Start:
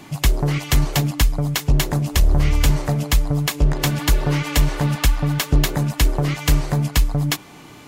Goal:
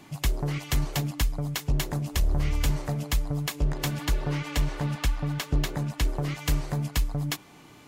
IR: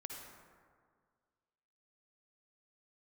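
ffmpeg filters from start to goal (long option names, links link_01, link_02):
-filter_complex "[0:a]asettb=1/sr,asplit=3[link_01][link_02][link_03];[link_01]atrim=end=4.054[link_04];[link_02]atrim=start=4.05:end=6.08,asetpts=PTS-STARTPTS,afade=type=in:duration=0.004:curve=qsin,afade=type=out:start_time=2.026:duration=0.004:curve=qsin,highshelf=frequency=9000:gain=-7.5[link_05];[link_03]atrim=start=6.076[link_06];[link_04][link_05]acrossfade=duration=0.004:curve1=hsin:curve2=qsin[link_07];[link_07][link_06]acrossfade=duration=0.004:curve1=qsin:curve2=hsin,volume=-9dB"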